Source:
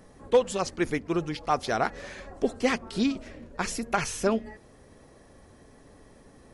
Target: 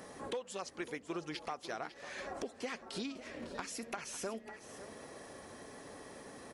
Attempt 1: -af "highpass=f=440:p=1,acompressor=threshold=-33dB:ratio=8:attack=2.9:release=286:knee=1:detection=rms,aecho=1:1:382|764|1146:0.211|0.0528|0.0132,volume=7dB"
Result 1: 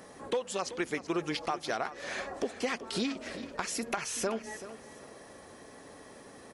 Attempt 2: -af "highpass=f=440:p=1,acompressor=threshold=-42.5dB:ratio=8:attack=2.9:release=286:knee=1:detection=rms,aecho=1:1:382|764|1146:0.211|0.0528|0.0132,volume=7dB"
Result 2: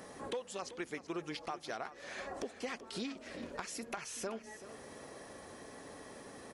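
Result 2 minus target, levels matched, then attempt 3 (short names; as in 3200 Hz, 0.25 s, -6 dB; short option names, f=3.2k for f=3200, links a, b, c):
echo 0.169 s early
-af "highpass=f=440:p=1,acompressor=threshold=-42.5dB:ratio=8:attack=2.9:release=286:knee=1:detection=rms,aecho=1:1:551|1102|1653:0.211|0.0528|0.0132,volume=7dB"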